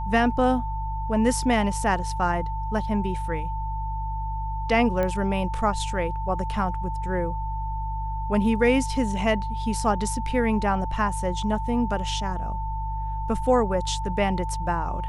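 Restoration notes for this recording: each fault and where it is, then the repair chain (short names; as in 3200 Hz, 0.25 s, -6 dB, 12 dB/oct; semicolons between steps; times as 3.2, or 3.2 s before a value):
hum 50 Hz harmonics 3 -30 dBFS
tone 890 Hz -31 dBFS
5.03 pop -15 dBFS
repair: de-click; notch 890 Hz, Q 30; de-hum 50 Hz, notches 3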